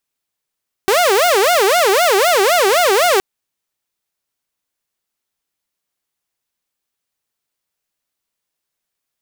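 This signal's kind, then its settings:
siren wail 380–721 Hz 3.9 per second saw −8 dBFS 2.32 s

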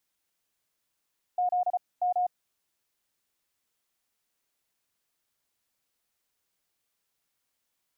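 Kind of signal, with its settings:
Morse code "Z M" 34 words per minute 721 Hz −23 dBFS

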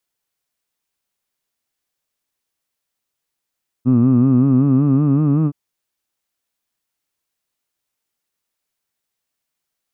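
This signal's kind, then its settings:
vowel from formants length 1.67 s, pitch 121 Hz, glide +4 semitones, vibrato depth 1.05 semitones, F1 250 Hz, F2 1,200 Hz, F3 2,600 Hz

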